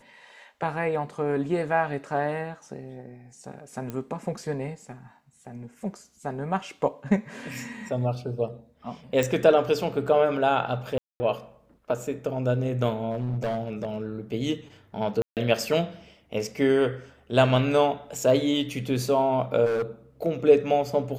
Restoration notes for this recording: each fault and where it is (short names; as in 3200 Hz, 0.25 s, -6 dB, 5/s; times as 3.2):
3.9 pop -20 dBFS
9.23 pop
10.98–11.2 gap 0.22 s
13.11–14.07 clipped -23.5 dBFS
15.22–15.37 gap 0.148 s
19.65–19.82 clipped -23 dBFS